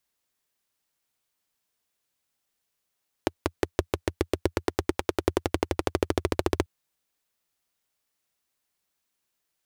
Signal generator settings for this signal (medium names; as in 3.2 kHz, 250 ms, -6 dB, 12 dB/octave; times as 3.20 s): single-cylinder engine model, changing speed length 3.39 s, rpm 600, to 1800, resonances 85/350 Hz